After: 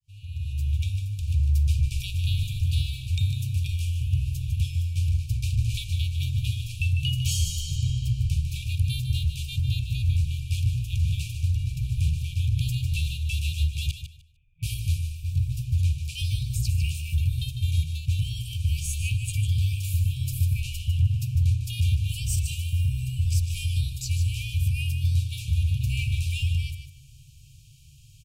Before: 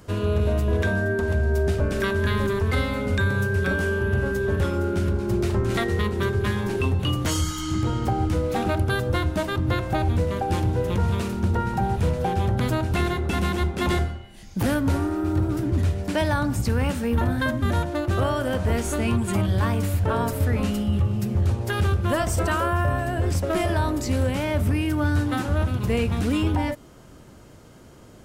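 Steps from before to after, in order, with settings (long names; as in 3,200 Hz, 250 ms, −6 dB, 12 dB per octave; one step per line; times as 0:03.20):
fade in at the beginning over 1.03 s
0:13.91–0:14.63: formant resonators in series e
brick-wall band-stop 160–2,300 Hz
on a send: repeating echo 151 ms, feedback 20%, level −9 dB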